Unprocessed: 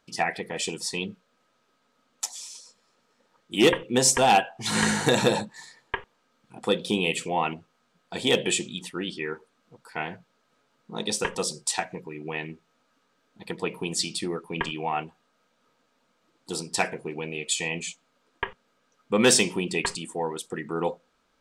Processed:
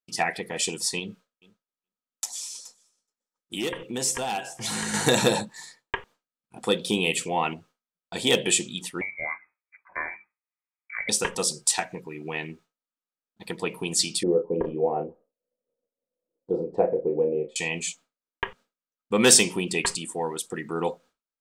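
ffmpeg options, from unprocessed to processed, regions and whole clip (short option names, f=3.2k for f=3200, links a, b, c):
-filter_complex "[0:a]asettb=1/sr,asplit=3[a][b][c];[a]atrim=end=0.994[d];[b]atrim=start=0.99:end=4.94,asetpts=PTS-STARTPTS,afade=t=in:d=0.004:c=qsin,afade=t=out:st=3.946:d=0.004:c=qsin,acompressor=threshold=-30dB:ratio=3:attack=3.2:release=140:knee=1:detection=peak,aecho=1:1:423|846:0.141|0.0283,atrim=end_sample=174195[e];[c]atrim=start=4.936[f];[d][e]acrossfade=d=0.004:c1=hsin:c2=qsin[g];[g][f]acrossfade=d=0.004:c1=qsin:c2=hsin,asettb=1/sr,asplit=3[h][i][j];[h]atrim=end=9.014[k];[i]atrim=start=9.01:end=11.09,asetpts=PTS-STARTPTS,afade=t=in:d=0.004:c=qsin,afade=t=out:st=2.076:d=0.004:c=qsin,lowpass=f=2.1k:t=q:w=0.5098,lowpass=f=2.1k:t=q:w=0.6013,lowpass=f=2.1k:t=q:w=0.9,lowpass=f=2.1k:t=q:w=2.563,afreqshift=-2500,bandreject=f=50:t=h:w=6,bandreject=f=100:t=h:w=6,bandreject=f=150:t=h:w=6,bandreject=f=200:t=h:w=6,bandreject=f=250:t=h:w=6,bandreject=f=300:t=h:w=6,bandreject=f=350:t=h:w=6[l];[j]atrim=start=11.086[m];[k][l]acrossfade=d=0.004:c1=hsin:c2=qsin[n];[n][m]acrossfade=d=0.004:c1=qsin:c2=hsin,asettb=1/sr,asplit=3[o][p][q];[o]atrim=end=14.234[r];[p]atrim=start=14.23:end=17.56,asetpts=PTS-STARTPTS,afade=t=in:d=0.004:c=qsin,afade=t=out:st=3.326:d=0.004:c=qsin,lowpass=f=510:t=q:w=5.7,asplit=2[s][t];[t]adelay=34,volume=-7dB[u];[s][u]amix=inputs=2:normalize=0,atrim=end_sample=146853[v];[q]atrim=start=17.556[w];[r][v]acrossfade=d=0.004:c1=hsin:c2=qsin[x];[x][w]acrossfade=d=0.004:c1=qsin:c2=hsin,agate=range=-33dB:threshold=-46dB:ratio=3:detection=peak,highshelf=f=6.4k:g=9"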